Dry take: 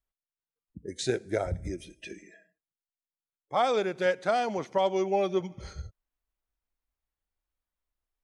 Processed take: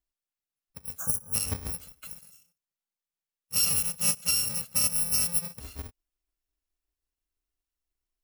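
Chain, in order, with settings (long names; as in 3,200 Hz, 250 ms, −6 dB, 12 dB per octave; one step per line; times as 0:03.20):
samples in bit-reversed order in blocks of 128 samples
time-frequency box erased 0:00.98–0:01.34, 1,700–5,600 Hz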